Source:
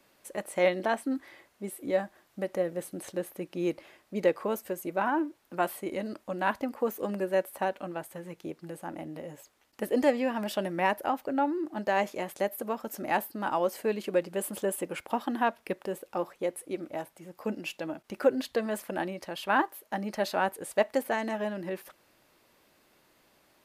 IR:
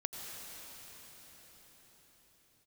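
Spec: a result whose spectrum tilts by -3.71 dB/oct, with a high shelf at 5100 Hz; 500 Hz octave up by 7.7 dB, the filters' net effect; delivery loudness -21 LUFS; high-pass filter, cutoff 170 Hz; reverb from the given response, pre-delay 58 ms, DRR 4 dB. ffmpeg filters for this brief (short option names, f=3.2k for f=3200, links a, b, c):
-filter_complex "[0:a]highpass=170,equalizer=f=500:t=o:g=9,highshelf=f=5.1k:g=4,asplit=2[a][b];[1:a]atrim=start_sample=2205,adelay=58[c];[b][c]afir=irnorm=-1:irlink=0,volume=-5dB[d];[a][d]amix=inputs=2:normalize=0,volume=3.5dB"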